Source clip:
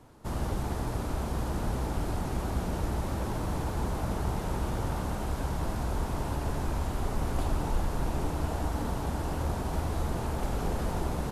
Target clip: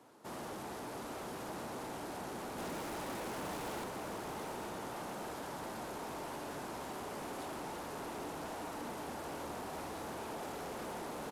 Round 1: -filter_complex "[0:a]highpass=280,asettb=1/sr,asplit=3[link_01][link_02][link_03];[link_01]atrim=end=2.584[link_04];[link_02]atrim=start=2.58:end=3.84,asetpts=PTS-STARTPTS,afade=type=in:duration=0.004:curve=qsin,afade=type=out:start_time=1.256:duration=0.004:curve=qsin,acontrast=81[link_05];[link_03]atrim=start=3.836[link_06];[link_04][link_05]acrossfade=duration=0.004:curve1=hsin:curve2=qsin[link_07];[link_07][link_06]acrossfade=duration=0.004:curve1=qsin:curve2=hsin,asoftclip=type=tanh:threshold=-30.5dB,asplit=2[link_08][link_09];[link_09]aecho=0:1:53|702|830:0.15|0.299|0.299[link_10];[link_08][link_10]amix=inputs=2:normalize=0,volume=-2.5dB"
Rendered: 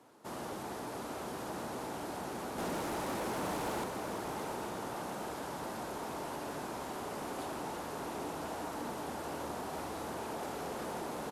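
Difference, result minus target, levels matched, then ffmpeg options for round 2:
soft clipping: distortion −5 dB
-filter_complex "[0:a]highpass=280,asettb=1/sr,asplit=3[link_01][link_02][link_03];[link_01]atrim=end=2.584[link_04];[link_02]atrim=start=2.58:end=3.84,asetpts=PTS-STARTPTS,afade=type=in:duration=0.004:curve=qsin,afade=type=out:start_time=1.256:duration=0.004:curve=qsin,acontrast=81[link_05];[link_03]atrim=start=3.836[link_06];[link_04][link_05]acrossfade=duration=0.004:curve1=hsin:curve2=qsin[link_07];[link_07][link_06]acrossfade=duration=0.004:curve1=qsin:curve2=hsin,asoftclip=type=tanh:threshold=-37.5dB,asplit=2[link_08][link_09];[link_09]aecho=0:1:53|702|830:0.15|0.299|0.299[link_10];[link_08][link_10]amix=inputs=2:normalize=0,volume=-2.5dB"

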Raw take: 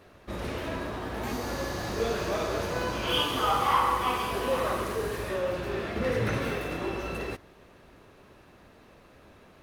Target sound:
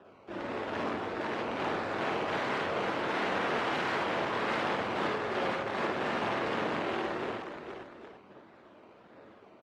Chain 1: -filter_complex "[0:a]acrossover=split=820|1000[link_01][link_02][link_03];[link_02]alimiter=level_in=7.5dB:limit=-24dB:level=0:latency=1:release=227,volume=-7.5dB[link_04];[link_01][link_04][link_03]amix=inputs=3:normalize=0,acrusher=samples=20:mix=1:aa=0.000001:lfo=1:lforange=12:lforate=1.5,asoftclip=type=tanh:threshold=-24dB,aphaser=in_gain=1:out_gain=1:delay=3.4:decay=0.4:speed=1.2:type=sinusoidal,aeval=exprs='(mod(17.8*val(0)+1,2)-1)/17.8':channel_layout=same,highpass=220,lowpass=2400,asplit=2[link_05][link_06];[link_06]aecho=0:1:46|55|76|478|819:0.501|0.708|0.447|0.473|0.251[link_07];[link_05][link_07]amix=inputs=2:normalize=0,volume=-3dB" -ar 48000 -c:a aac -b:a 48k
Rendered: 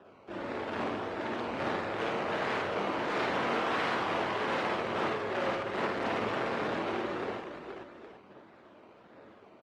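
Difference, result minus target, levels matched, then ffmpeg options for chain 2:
soft clipping: distortion +9 dB
-filter_complex "[0:a]acrossover=split=820|1000[link_01][link_02][link_03];[link_02]alimiter=level_in=7.5dB:limit=-24dB:level=0:latency=1:release=227,volume=-7.5dB[link_04];[link_01][link_04][link_03]amix=inputs=3:normalize=0,acrusher=samples=20:mix=1:aa=0.000001:lfo=1:lforange=12:lforate=1.5,asoftclip=type=tanh:threshold=-17.5dB,aphaser=in_gain=1:out_gain=1:delay=3.4:decay=0.4:speed=1.2:type=sinusoidal,aeval=exprs='(mod(17.8*val(0)+1,2)-1)/17.8':channel_layout=same,highpass=220,lowpass=2400,asplit=2[link_05][link_06];[link_06]aecho=0:1:46|55|76|478|819:0.501|0.708|0.447|0.473|0.251[link_07];[link_05][link_07]amix=inputs=2:normalize=0,volume=-3dB" -ar 48000 -c:a aac -b:a 48k

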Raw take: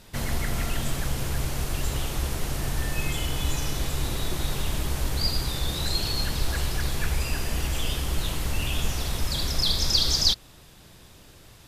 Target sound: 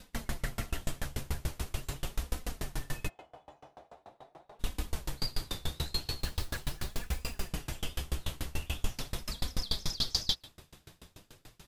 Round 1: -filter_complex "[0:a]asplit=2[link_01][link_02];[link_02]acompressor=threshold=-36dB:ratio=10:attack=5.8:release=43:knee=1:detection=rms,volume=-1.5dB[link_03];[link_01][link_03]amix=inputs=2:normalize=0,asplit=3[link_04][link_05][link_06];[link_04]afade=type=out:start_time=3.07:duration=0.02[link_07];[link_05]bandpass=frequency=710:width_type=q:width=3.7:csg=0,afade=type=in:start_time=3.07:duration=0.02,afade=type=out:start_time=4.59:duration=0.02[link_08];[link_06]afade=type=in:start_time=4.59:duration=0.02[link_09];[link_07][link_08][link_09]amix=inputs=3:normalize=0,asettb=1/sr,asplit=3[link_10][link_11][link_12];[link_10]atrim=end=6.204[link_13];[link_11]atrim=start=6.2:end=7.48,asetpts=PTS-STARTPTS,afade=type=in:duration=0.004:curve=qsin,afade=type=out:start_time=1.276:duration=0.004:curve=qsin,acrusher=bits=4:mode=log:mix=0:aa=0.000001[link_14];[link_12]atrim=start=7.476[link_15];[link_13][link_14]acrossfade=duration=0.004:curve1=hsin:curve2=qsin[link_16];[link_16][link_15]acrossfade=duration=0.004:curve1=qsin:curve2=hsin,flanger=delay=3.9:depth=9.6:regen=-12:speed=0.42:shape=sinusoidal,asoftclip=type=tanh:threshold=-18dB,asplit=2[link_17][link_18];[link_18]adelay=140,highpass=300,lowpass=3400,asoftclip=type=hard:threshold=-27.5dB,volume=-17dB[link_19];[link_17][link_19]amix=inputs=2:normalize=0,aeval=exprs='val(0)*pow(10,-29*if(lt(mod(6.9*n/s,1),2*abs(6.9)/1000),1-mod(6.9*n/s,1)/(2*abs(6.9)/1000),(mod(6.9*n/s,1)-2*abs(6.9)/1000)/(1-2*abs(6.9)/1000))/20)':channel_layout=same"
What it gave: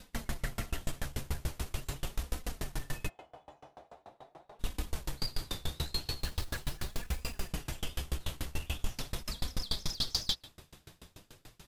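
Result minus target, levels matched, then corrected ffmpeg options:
soft clipping: distortion +17 dB
-filter_complex "[0:a]asplit=2[link_01][link_02];[link_02]acompressor=threshold=-36dB:ratio=10:attack=5.8:release=43:knee=1:detection=rms,volume=-1.5dB[link_03];[link_01][link_03]amix=inputs=2:normalize=0,asplit=3[link_04][link_05][link_06];[link_04]afade=type=out:start_time=3.07:duration=0.02[link_07];[link_05]bandpass=frequency=710:width_type=q:width=3.7:csg=0,afade=type=in:start_time=3.07:duration=0.02,afade=type=out:start_time=4.59:duration=0.02[link_08];[link_06]afade=type=in:start_time=4.59:duration=0.02[link_09];[link_07][link_08][link_09]amix=inputs=3:normalize=0,asettb=1/sr,asplit=3[link_10][link_11][link_12];[link_10]atrim=end=6.204[link_13];[link_11]atrim=start=6.2:end=7.48,asetpts=PTS-STARTPTS,afade=type=in:duration=0.004:curve=qsin,afade=type=out:start_time=1.276:duration=0.004:curve=qsin,acrusher=bits=4:mode=log:mix=0:aa=0.000001[link_14];[link_12]atrim=start=7.476[link_15];[link_13][link_14]acrossfade=duration=0.004:curve1=hsin:curve2=qsin[link_16];[link_16][link_15]acrossfade=duration=0.004:curve1=qsin:curve2=hsin,flanger=delay=3.9:depth=9.6:regen=-12:speed=0.42:shape=sinusoidal,asoftclip=type=tanh:threshold=-7.5dB,asplit=2[link_17][link_18];[link_18]adelay=140,highpass=300,lowpass=3400,asoftclip=type=hard:threshold=-27.5dB,volume=-17dB[link_19];[link_17][link_19]amix=inputs=2:normalize=0,aeval=exprs='val(0)*pow(10,-29*if(lt(mod(6.9*n/s,1),2*abs(6.9)/1000),1-mod(6.9*n/s,1)/(2*abs(6.9)/1000),(mod(6.9*n/s,1)-2*abs(6.9)/1000)/(1-2*abs(6.9)/1000))/20)':channel_layout=same"

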